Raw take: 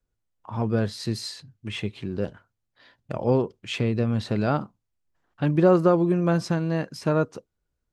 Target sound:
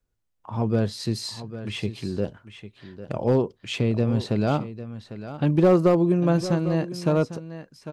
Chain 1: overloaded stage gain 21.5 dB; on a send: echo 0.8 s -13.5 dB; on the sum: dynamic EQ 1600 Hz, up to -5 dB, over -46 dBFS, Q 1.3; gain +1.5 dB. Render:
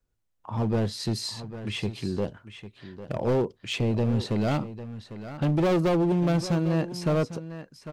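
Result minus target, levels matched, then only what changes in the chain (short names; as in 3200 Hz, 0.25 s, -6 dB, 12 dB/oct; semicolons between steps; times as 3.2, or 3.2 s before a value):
overloaded stage: distortion +12 dB
change: overloaded stage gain 13 dB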